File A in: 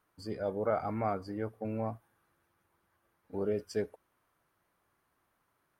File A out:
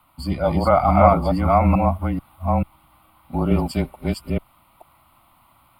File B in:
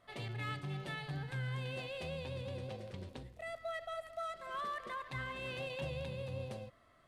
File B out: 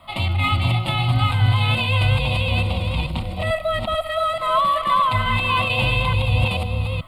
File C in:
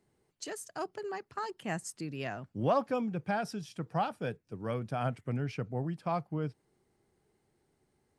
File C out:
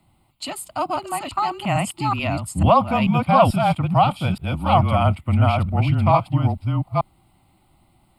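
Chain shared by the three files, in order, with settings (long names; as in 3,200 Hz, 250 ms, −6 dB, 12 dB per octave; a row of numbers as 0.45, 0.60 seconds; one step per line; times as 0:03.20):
delay that plays each chunk backwards 438 ms, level −1 dB
phaser with its sweep stopped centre 1,700 Hz, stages 6
frequency shifter −26 Hz
loudness normalisation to −20 LKFS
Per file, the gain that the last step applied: +20.0, +23.0, +17.0 decibels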